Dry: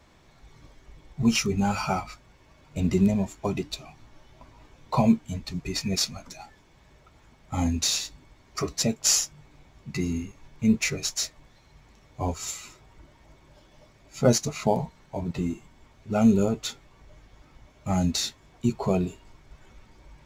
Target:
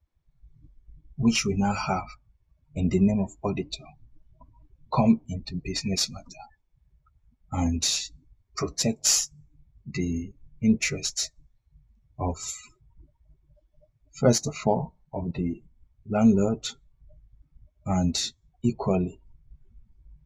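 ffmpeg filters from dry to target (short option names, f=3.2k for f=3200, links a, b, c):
-af "afftdn=nr=29:nf=-42"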